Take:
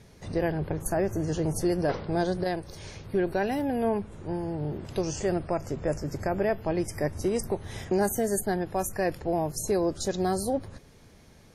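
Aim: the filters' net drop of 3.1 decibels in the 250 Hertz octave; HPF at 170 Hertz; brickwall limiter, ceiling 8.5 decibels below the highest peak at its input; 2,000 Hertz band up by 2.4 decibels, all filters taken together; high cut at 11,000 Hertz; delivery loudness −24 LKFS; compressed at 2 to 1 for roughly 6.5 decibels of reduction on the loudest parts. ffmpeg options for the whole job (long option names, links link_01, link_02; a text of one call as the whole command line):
ffmpeg -i in.wav -af "highpass=170,lowpass=11000,equalizer=frequency=250:width_type=o:gain=-3.5,equalizer=frequency=2000:width_type=o:gain=3,acompressor=threshold=-35dB:ratio=2,volume=15dB,alimiter=limit=-13.5dB:level=0:latency=1" out.wav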